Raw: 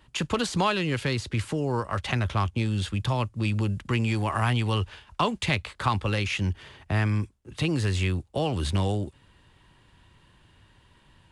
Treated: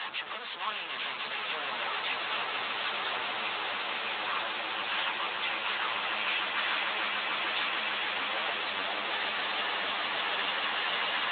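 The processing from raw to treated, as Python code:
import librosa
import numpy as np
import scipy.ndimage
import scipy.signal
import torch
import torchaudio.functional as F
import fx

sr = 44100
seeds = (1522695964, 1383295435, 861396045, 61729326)

p1 = np.sign(x) * np.sqrt(np.mean(np.square(x)))
p2 = fx.add_hum(p1, sr, base_hz=50, snr_db=13)
p3 = fx.lpc_vocoder(p2, sr, seeds[0], excitation='pitch_kept', order=10)
p4 = scipy.signal.sosfilt(scipy.signal.butter(2, 790.0, 'highpass', fs=sr, output='sos'), p3)
p5 = p4 + fx.echo_swell(p4, sr, ms=149, loudest=8, wet_db=-7.5, dry=0)
y = fx.ensemble(p5, sr)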